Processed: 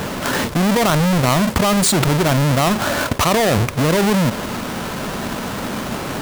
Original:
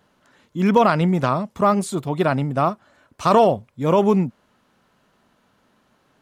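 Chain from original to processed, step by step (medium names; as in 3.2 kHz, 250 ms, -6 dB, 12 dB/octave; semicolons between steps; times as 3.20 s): square wave that keeps the level; level flattener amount 100%; trim -7.5 dB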